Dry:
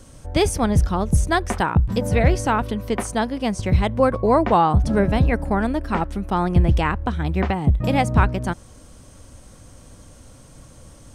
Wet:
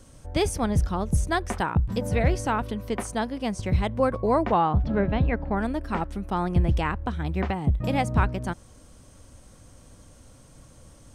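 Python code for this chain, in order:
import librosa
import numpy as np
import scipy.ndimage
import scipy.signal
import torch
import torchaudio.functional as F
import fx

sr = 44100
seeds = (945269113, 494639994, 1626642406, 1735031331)

y = fx.lowpass(x, sr, hz=3800.0, slope=24, at=(4.51, 5.55), fade=0.02)
y = y * 10.0 ** (-5.5 / 20.0)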